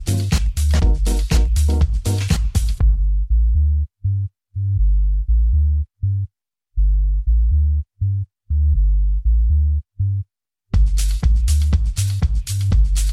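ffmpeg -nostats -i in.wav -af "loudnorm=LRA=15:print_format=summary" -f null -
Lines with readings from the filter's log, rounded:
Input Integrated:    -19.6 LUFS
Input True Peak:      -5.0 dBTP
Input LRA:             1.5 LU
Input Threshold:     -29.7 LUFS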